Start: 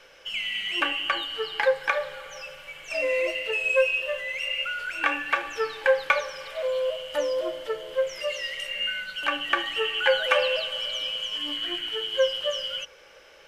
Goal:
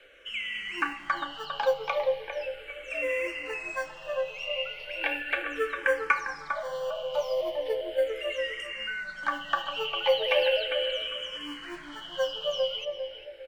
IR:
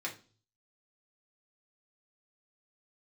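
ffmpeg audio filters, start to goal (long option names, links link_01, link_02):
-filter_complex "[0:a]aemphasis=mode=reproduction:type=cd,acrossover=split=310|1200|2700[link_01][link_02][link_03][link_04];[link_01]acrusher=samples=34:mix=1:aa=0.000001[link_05];[link_05][link_02][link_03][link_04]amix=inputs=4:normalize=0,asplit=2[link_06][link_07];[link_07]adelay=401,lowpass=frequency=1100:poles=1,volume=-3.5dB,asplit=2[link_08][link_09];[link_09]adelay=401,lowpass=frequency=1100:poles=1,volume=0.39,asplit=2[link_10][link_11];[link_11]adelay=401,lowpass=frequency=1100:poles=1,volume=0.39,asplit=2[link_12][link_13];[link_13]adelay=401,lowpass=frequency=1100:poles=1,volume=0.39,asplit=2[link_14][link_15];[link_15]adelay=401,lowpass=frequency=1100:poles=1,volume=0.39[link_16];[link_06][link_08][link_10][link_12][link_14][link_16]amix=inputs=6:normalize=0,asplit=2[link_17][link_18];[link_18]afreqshift=-0.37[link_19];[link_17][link_19]amix=inputs=2:normalize=1"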